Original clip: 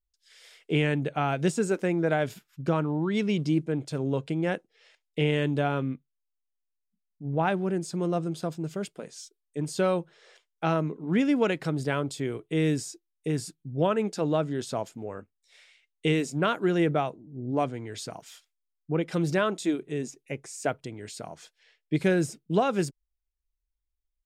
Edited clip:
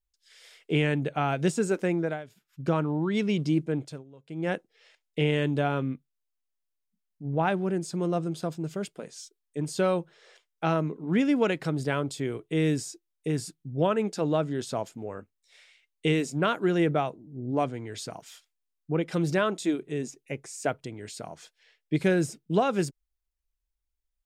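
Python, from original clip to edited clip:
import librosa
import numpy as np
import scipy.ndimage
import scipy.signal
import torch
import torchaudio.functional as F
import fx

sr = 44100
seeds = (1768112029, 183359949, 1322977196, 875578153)

y = fx.edit(x, sr, fx.fade_down_up(start_s=1.95, length_s=0.7, db=-16.5, fade_s=0.28),
    fx.fade_down_up(start_s=3.78, length_s=0.73, db=-23.5, fade_s=0.26), tone=tone)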